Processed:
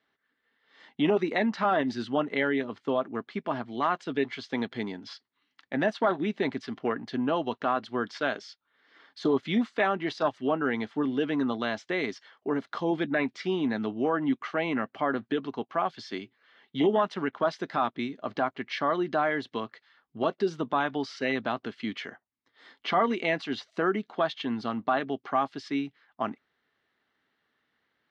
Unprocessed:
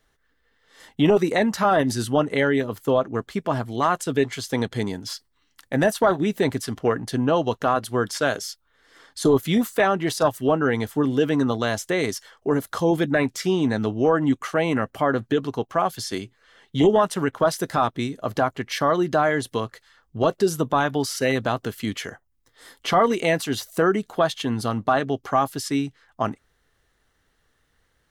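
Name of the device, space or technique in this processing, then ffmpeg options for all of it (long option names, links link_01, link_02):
kitchen radio: -af "highpass=220,equalizer=frequency=230:width_type=q:width=4:gain=4,equalizer=frequency=500:width_type=q:width=4:gain=-5,equalizer=frequency=2200:width_type=q:width=4:gain=3,lowpass=frequency=4300:width=0.5412,lowpass=frequency=4300:width=1.3066,volume=-5.5dB"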